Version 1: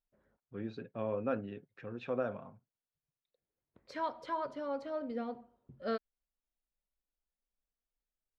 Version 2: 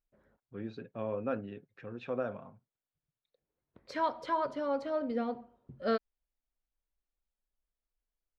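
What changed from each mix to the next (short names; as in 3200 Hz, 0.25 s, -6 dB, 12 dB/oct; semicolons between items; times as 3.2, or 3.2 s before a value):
second voice +5.0 dB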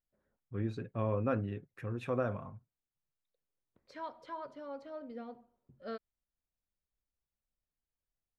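first voice: remove speaker cabinet 210–5000 Hz, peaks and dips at 340 Hz -4 dB, 1100 Hz -6 dB, 2000 Hz -5 dB; second voice -11.5 dB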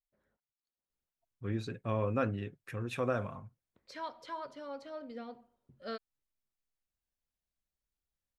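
first voice: entry +0.90 s; master: add high shelf 2400 Hz +11.5 dB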